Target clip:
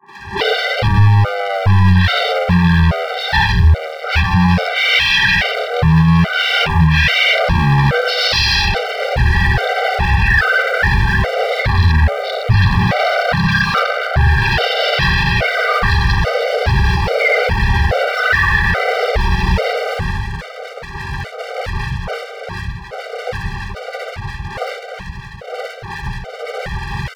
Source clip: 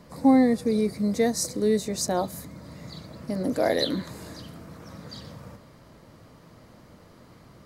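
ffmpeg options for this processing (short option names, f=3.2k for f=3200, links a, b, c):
-filter_complex "[0:a]agate=range=-27dB:threshold=-49dB:ratio=16:detection=peak,equalizer=f=89:t=o:w=0.31:g=13.5,bandreject=f=318.3:t=h:w=4,bandreject=f=636.6:t=h:w=4,bandreject=f=954.9:t=h:w=4,bandreject=f=1.2732k:t=h:w=4,bandreject=f=1.5915k:t=h:w=4,bandreject=f=1.9098k:t=h:w=4,bandreject=f=2.2281k:t=h:w=4,bandreject=f=2.5464k:t=h:w=4,bandreject=f=2.8647k:t=h:w=4,bandreject=f=3.183k:t=h:w=4,bandreject=f=3.5013k:t=h:w=4,asplit=2[a][b];[b]highpass=f=720:p=1,volume=37dB,asoftclip=type=tanh:threshold=-8.5dB[c];[a][c]amix=inputs=2:normalize=0,lowpass=f=1.6k:p=1,volume=-6dB,asetrate=60591,aresample=44100,atempo=0.727827,acompressor=threshold=-20dB:ratio=2,asetrate=12436,aresample=44100,aeval=exprs='sgn(val(0))*max(abs(val(0))-0.00224,0)':c=same,firequalizer=gain_entry='entry(160,0);entry(270,-24);entry(490,3);entry(1600,12)':delay=0.05:min_phase=1,acrossover=split=250|1300[d][e][f];[f]adelay=60[g];[d]adelay=180[h];[h][e][g]amix=inputs=3:normalize=0,alimiter=level_in=17.5dB:limit=-1dB:release=50:level=0:latency=1,afftfilt=real='re*gt(sin(2*PI*1.2*pts/sr)*(1-2*mod(floor(b*sr/1024/390),2)),0)':imag='im*gt(sin(2*PI*1.2*pts/sr)*(1-2*mod(floor(b*sr/1024/390),2)),0)':win_size=1024:overlap=0.75,volume=-1.5dB"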